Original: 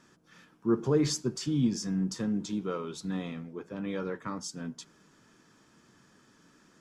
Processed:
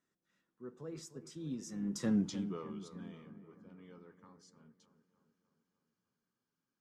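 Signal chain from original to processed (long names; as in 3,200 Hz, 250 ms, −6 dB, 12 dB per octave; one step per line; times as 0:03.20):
source passing by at 0:02.14, 26 m/s, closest 3.4 metres
bucket-brigade delay 303 ms, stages 4,096, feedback 57%, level −12.5 dB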